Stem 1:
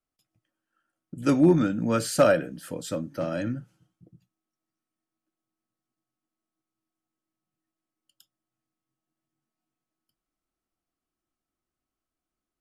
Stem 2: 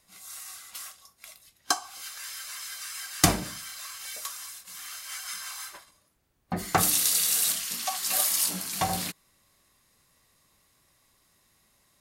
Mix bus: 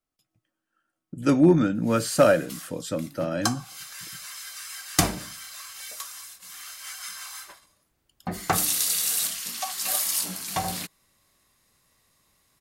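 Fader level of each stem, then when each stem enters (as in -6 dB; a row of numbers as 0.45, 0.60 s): +1.5, -0.5 dB; 0.00, 1.75 s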